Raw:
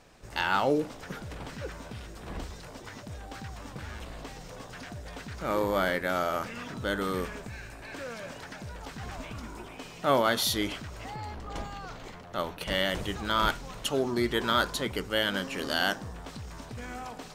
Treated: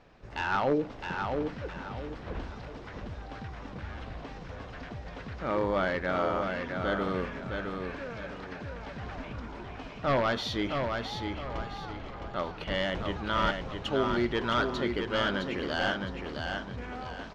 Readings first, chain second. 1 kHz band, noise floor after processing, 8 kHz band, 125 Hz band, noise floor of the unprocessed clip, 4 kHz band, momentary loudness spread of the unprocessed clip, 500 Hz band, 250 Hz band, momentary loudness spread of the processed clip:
-0.5 dB, -44 dBFS, -13.5 dB, +1.5 dB, -46 dBFS, -4.5 dB, 16 LU, 0.0 dB, +0.5 dB, 14 LU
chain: one-sided fold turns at -18.5 dBFS; air absorption 210 m; feedback echo 0.662 s, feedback 34%, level -5 dB

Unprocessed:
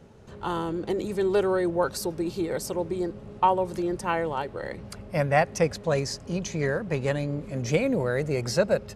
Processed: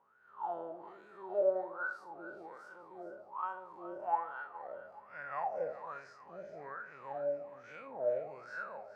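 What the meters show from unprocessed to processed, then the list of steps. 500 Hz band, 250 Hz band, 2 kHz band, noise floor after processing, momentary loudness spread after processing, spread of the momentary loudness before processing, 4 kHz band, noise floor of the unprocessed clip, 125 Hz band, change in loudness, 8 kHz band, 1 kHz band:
-12.0 dB, -24.5 dB, -11.0 dB, -58 dBFS, 15 LU, 8 LU, under -30 dB, -44 dBFS, -34.0 dB, -12.5 dB, under -35 dB, -10.0 dB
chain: time blur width 0.112 s; wah 1.2 Hz 580–1500 Hz, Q 22; split-band echo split 970 Hz, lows 80 ms, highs 0.422 s, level -13 dB; gain +9 dB

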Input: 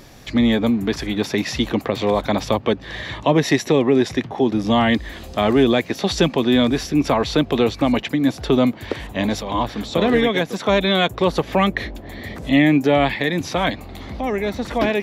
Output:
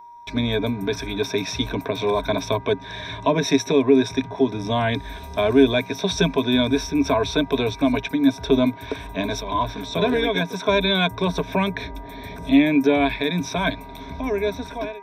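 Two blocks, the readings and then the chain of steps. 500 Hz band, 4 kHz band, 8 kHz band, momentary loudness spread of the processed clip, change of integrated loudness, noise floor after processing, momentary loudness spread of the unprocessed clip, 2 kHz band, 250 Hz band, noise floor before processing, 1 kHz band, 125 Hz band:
-2.0 dB, -1.5 dB, -1.0 dB, 12 LU, -2.5 dB, -38 dBFS, 7 LU, -2.5 dB, -3.0 dB, -38 dBFS, -3.0 dB, -3.0 dB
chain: ending faded out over 0.52 s; ripple EQ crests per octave 1.6, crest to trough 15 dB; buzz 400 Hz, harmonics 5, -46 dBFS -2 dB/oct; gate with hold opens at -25 dBFS; whine 950 Hz -35 dBFS; gain -5.5 dB

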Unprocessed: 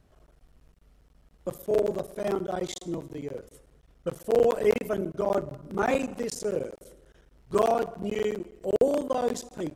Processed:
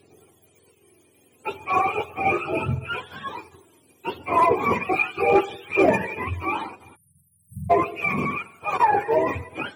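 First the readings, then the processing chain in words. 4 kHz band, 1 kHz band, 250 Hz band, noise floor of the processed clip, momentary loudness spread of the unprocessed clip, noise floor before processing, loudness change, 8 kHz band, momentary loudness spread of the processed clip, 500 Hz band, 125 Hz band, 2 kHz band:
+4.0 dB, +12.0 dB, +3.0 dB, -61 dBFS, 13 LU, -61 dBFS, +5.5 dB, n/a, 15 LU, +0.5 dB, +8.0 dB, +14.0 dB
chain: spectrum mirrored in octaves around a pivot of 690 Hz; small resonant body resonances 400/2400 Hz, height 17 dB, ringing for 20 ms; phaser 0.37 Hz, delay 4.1 ms, feedback 38%; in parallel at -8.5 dB: wavefolder -13 dBFS; on the sum: spectral delete 6.96–7.7, 210–8300 Hz

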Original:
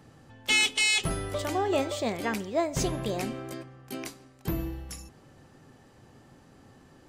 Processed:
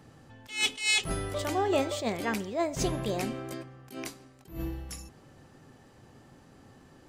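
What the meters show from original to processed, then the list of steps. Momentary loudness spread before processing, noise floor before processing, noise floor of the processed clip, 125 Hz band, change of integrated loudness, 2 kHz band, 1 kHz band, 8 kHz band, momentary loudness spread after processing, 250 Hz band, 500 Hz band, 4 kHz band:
18 LU, -57 dBFS, -57 dBFS, -2.0 dB, -2.5 dB, -4.0 dB, -1.0 dB, -3.0 dB, 16 LU, -1.0 dB, -1.0 dB, -3.5 dB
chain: attack slew limiter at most 150 dB/s

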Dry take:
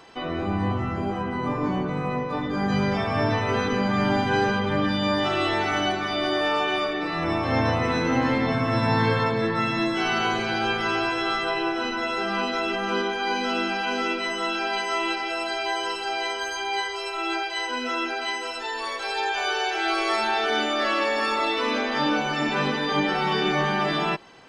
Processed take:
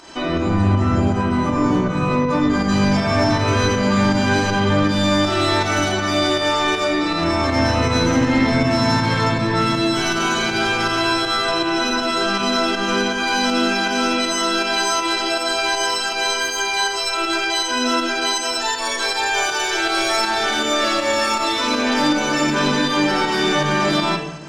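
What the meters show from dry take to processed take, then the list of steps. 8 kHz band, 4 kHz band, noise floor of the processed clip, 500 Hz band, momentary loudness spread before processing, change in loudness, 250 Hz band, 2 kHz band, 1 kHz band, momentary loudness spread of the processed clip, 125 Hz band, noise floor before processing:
+16.0 dB, +8.5 dB, -24 dBFS, +5.0 dB, 5 LU, +6.5 dB, +7.5 dB, +5.5 dB, +4.5 dB, 2 LU, +7.5 dB, -31 dBFS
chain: bell 6800 Hz +12.5 dB 0.93 oct; in parallel at +2 dB: limiter -18.5 dBFS, peak gain reduction 8.5 dB; on the sum: soft clip -14 dBFS, distortion -17 dB; pump 160 bpm, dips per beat 1, -9 dB, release 0.106 s; shoebox room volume 3100 m³, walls furnished, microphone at 2.7 m

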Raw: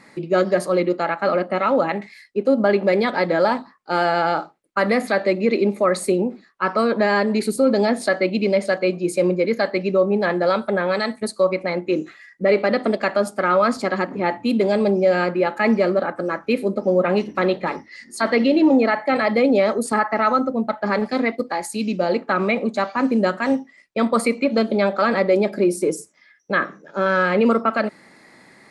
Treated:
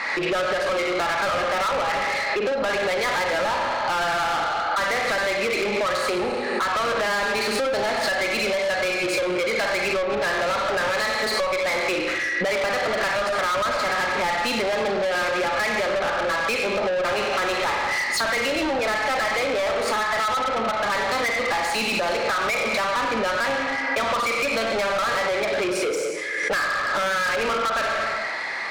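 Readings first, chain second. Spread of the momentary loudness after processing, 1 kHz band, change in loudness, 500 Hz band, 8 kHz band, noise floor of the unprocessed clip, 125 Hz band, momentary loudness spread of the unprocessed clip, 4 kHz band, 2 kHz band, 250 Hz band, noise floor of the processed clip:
1 LU, 0.0 dB, -2.5 dB, -5.0 dB, +4.0 dB, -51 dBFS, -9.5 dB, 7 LU, +6.5 dB, +3.0 dB, -12.0 dB, -26 dBFS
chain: three-band isolator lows -14 dB, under 570 Hz, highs -22 dB, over 4900 Hz; Schroeder reverb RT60 0.88 s, combs from 32 ms, DRR 5 dB; compressor 8:1, threshold -31 dBFS, peak gain reduction 16.5 dB; overdrive pedal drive 30 dB, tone 7800 Hz, clips at -16.5 dBFS; backwards sustainer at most 28 dB/s

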